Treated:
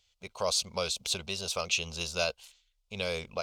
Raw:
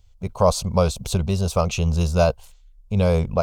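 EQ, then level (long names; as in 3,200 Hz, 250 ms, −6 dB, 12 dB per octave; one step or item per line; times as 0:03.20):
meter weighting curve D
dynamic equaliser 870 Hz, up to −5 dB, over −30 dBFS, Q 1.2
parametric band 140 Hz −10.5 dB 2.5 octaves
−8.5 dB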